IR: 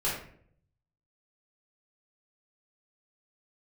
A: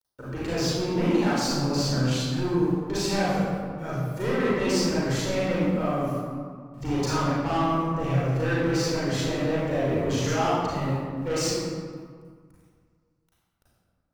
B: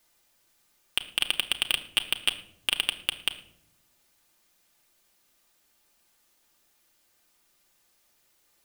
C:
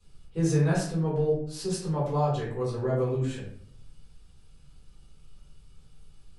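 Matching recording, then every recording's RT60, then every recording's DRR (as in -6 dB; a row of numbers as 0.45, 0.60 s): C; 1.8 s, not exponential, 0.60 s; -9.0, 4.0, -9.0 dB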